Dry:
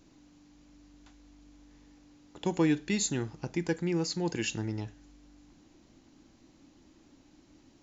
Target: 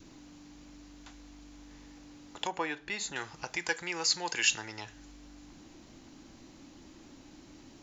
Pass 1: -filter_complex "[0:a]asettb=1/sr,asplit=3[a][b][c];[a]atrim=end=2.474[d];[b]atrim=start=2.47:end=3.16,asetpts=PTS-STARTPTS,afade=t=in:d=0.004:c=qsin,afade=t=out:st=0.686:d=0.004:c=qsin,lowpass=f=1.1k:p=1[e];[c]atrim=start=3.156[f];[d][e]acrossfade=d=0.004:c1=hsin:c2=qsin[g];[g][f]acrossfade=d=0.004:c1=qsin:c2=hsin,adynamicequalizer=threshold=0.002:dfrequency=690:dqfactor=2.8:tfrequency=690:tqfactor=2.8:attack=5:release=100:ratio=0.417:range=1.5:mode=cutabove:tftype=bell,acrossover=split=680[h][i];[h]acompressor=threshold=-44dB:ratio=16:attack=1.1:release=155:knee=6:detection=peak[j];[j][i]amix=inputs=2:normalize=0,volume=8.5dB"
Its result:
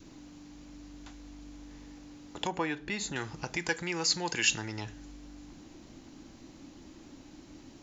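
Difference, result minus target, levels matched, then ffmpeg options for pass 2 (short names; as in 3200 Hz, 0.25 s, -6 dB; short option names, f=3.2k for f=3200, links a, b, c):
compressor: peak gain reduction -11 dB
-filter_complex "[0:a]asettb=1/sr,asplit=3[a][b][c];[a]atrim=end=2.474[d];[b]atrim=start=2.47:end=3.16,asetpts=PTS-STARTPTS,afade=t=in:d=0.004:c=qsin,afade=t=out:st=0.686:d=0.004:c=qsin,lowpass=f=1.1k:p=1[e];[c]atrim=start=3.156[f];[d][e]acrossfade=d=0.004:c1=hsin:c2=qsin[g];[g][f]acrossfade=d=0.004:c1=qsin:c2=hsin,adynamicequalizer=threshold=0.002:dfrequency=690:dqfactor=2.8:tfrequency=690:tqfactor=2.8:attack=5:release=100:ratio=0.417:range=1.5:mode=cutabove:tftype=bell,acrossover=split=680[h][i];[h]acompressor=threshold=-55.5dB:ratio=16:attack=1.1:release=155:knee=6:detection=peak[j];[j][i]amix=inputs=2:normalize=0,volume=8.5dB"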